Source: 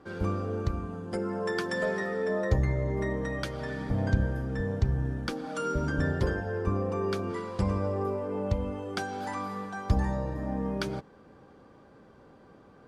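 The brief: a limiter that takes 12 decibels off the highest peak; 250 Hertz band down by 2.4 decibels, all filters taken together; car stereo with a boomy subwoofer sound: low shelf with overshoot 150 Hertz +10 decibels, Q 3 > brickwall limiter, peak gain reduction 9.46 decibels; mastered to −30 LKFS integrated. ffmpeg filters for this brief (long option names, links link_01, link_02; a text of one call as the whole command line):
ffmpeg -i in.wav -af "equalizer=frequency=250:width_type=o:gain=-3,alimiter=limit=-23.5dB:level=0:latency=1,lowshelf=frequency=150:width_type=q:width=3:gain=10,volume=-2dB,alimiter=limit=-20.5dB:level=0:latency=1" out.wav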